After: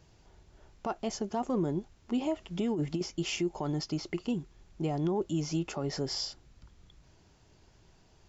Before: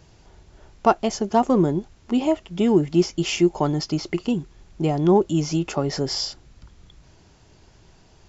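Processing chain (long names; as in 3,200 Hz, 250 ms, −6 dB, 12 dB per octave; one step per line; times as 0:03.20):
0:02.39–0:03.01: compressor whose output falls as the input rises −21 dBFS, ratio −1
brickwall limiter −14 dBFS, peak gain reduction 10.5 dB
level −8.5 dB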